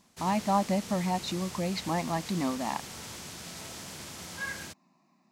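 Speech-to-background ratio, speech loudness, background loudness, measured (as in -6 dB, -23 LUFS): 9.5 dB, -31.0 LUFS, -40.5 LUFS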